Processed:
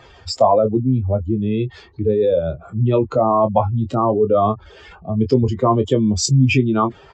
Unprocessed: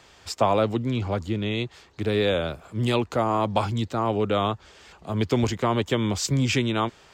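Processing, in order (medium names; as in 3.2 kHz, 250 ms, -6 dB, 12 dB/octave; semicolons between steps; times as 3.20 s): spectral contrast enhancement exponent 2.3; doubling 23 ms -8.5 dB; trim +7.5 dB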